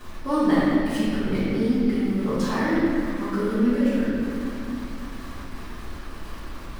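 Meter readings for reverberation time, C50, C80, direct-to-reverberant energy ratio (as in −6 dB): 2.6 s, −4.0 dB, −2.0 dB, −13.0 dB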